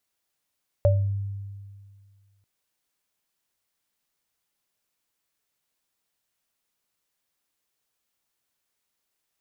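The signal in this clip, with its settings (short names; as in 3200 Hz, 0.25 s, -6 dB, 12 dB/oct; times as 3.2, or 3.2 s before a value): sine partials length 1.59 s, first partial 99.5 Hz, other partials 580 Hz, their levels 1 dB, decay 1.98 s, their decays 0.29 s, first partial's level -16 dB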